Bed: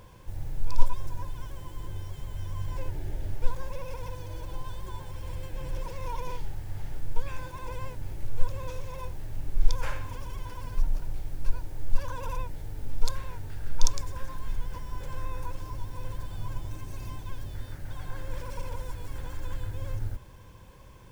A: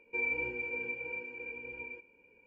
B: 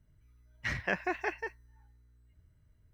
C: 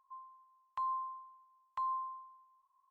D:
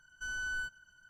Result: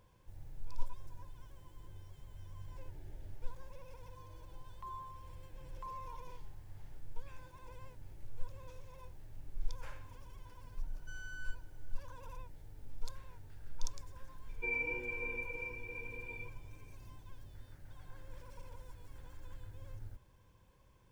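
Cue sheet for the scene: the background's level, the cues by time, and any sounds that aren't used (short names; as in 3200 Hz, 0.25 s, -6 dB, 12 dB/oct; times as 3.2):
bed -15.5 dB
4.05 add C -10.5 dB
10.86 add D -12 dB + LPF 11000 Hz
14.49 add A -3.5 dB
not used: B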